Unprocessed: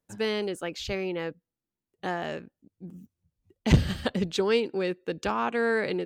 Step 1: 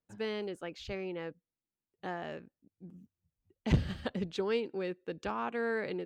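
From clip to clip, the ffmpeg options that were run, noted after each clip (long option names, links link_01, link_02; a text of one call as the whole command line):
ffmpeg -i in.wav -af "highshelf=frequency=5800:gain=-11.5,volume=-7.5dB" out.wav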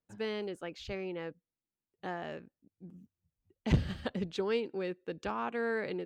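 ffmpeg -i in.wav -af anull out.wav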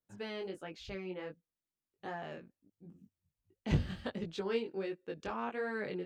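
ffmpeg -i in.wav -af "flanger=delay=18.5:depth=3.7:speed=1.4" out.wav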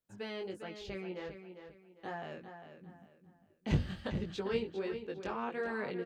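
ffmpeg -i in.wav -filter_complex "[0:a]asplit=2[link_01][link_02];[link_02]adelay=401,lowpass=frequency=4800:poles=1,volume=-9dB,asplit=2[link_03][link_04];[link_04]adelay=401,lowpass=frequency=4800:poles=1,volume=0.32,asplit=2[link_05][link_06];[link_06]adelay=401,lowpass=frequency=4800:poles=1,volume=0.32,asplit=2[link_07][link_08];[link_08]adelay=401,lowpass=frequency=4800:poles=1,volume=0.32[link_09];[link_01][link_03][link_05][link_07][link_09]amix=inputs=5:normalize=0" out.wav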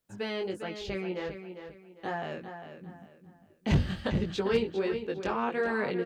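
ffmpeg -i in.wav -af "asoftclip=type=hard:threshold=-25dB,volume=7.5dB" out.wav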